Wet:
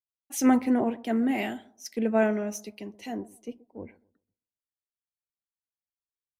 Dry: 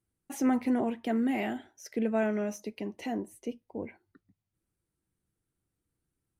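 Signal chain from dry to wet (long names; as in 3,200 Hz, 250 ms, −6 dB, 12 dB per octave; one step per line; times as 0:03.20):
bucket-brigade delay 130 ms, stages 1,024, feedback 50%, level −17.5 dB
multiband upward and downward expander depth 100%
level +2.5 dB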